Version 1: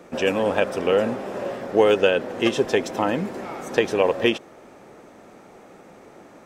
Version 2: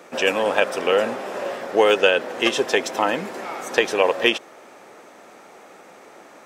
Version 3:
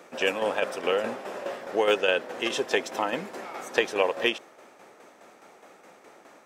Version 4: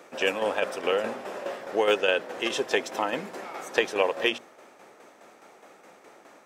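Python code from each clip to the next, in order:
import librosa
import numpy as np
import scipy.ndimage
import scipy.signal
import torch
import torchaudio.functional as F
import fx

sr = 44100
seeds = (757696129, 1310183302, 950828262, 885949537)

y1 = fx.highpass(x, sr, hz=800.0, slope=6)
y1 = y1 * librosa.db_to_amplitude(6.0)
y2 = fx.tremolo_shape(y1, sr, shape='saw_down', hz=4.8, depth_pct=55)
y2 = y2 * librosa.db_to_amplitude(-4.0)
y3 = fx.hum_notches(y2, sr, base_hz=60, count=4)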